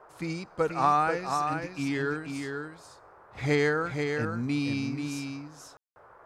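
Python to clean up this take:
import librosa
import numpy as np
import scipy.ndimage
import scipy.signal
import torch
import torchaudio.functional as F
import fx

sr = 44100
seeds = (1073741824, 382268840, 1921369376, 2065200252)

y = fx.fix_ambience(x, sr, seeds[0], print_start_s=2.85, print_end_s=3.35, start_s=5.77, end_s=5.96)
y = fx.noise_reduce(y, sr, print_start_s=2.85, print_end_s=3.35, reduce_db=20.0)
y = fx.fix_echo_inverse(y, sr, delay_ms=484, level_db=-5.5)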